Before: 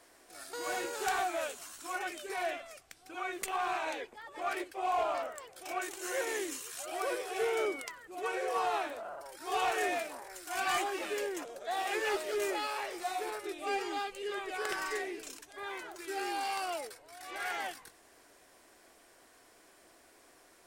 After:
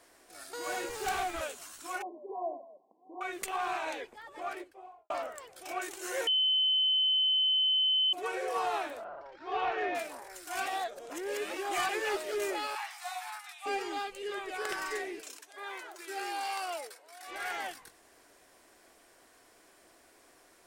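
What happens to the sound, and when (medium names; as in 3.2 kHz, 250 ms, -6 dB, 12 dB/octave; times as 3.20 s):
0.89–1.41 s: comb filter that takes the minimum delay 2.5 ms
2.02–3.21 s: brick-wall FIR band-pass 180–1100 Hz
4.20–5.10 s: studio fade out
6.27–8.13 s: bleep 3.05 kHz -24 dBFS
9.04–9.95 s: Gaussian low-pass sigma 2.4 samples
10.66–11.89 s: reverse
12.75–13.66 s: steep high-pass 740 Hz 96 dB/octave
15.20–17.28 s: high-pass 410 Hz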